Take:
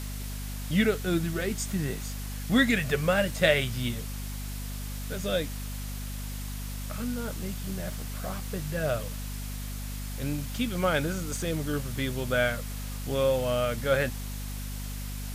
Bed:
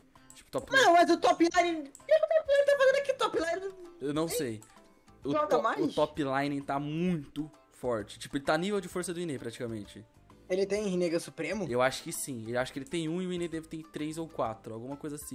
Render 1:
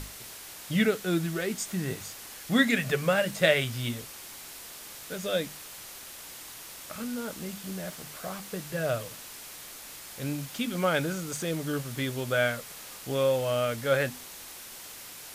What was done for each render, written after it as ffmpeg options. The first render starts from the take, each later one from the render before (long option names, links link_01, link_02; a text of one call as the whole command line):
ffmpeg -i in.wav -af "bandreject=frequency=50:width_type=h:width=6,bandreject=frequency=100:width_type=h:width=6,bandreject=frequency=150:width_type=h:width=6,bandreject=frequency=200:width_type=h:width=6,bandreject=frequency=250:width_type=h:width=6" out.wav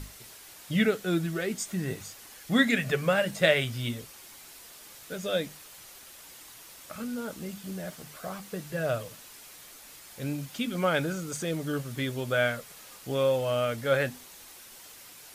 ffmpeg -i in.wav -af "afftdn=noise_reduction=6:noise_floor=-45" out.wav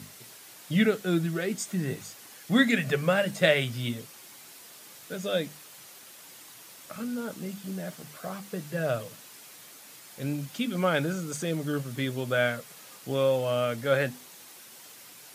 ffmpeg -i in.wav -af "highpass=frequency=120:width=0.5412,highpass=frequency=120:width=1.3066,lowshelf=frequency=210:gain=4" out.wav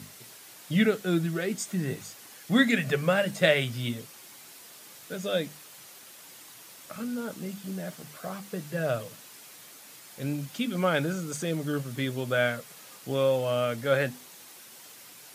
ffmpeg -i in.wav -af anull out.wav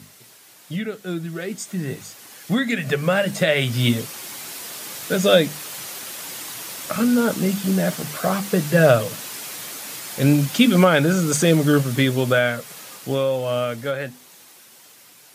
ffmpeg -i in.wav -af "alimiter=limit=-18.5dB:level=0:latency=1:release=313,dynaudnorm=framelen=310:gausssize=21:maxgain=17dB" out.wav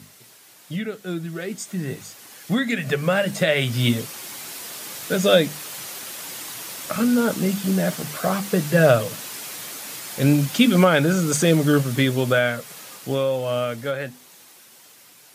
ffmpeg -i in.wav -af "volume=-1dB" out.wav